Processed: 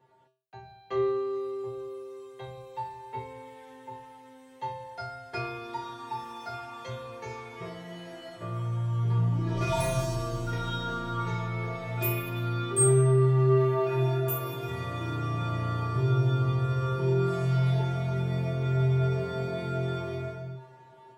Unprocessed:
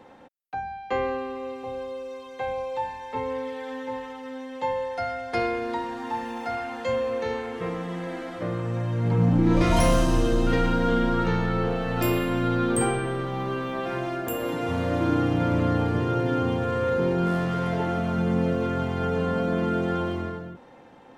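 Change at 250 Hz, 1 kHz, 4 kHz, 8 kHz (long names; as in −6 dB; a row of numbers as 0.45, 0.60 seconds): −9.5, −6.5, −4.5, +4.0 decibels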